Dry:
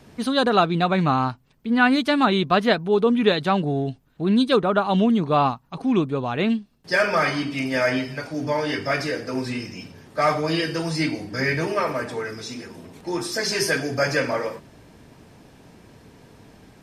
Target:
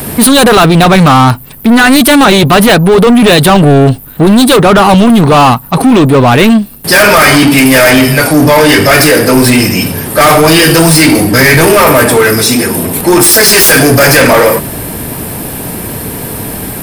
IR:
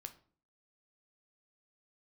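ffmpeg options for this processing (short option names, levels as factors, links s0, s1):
-af "apsyclip=13.3,aexciter=amount=6.5:drive=9.1:freq=9000,acontrast=86,volume=0.891"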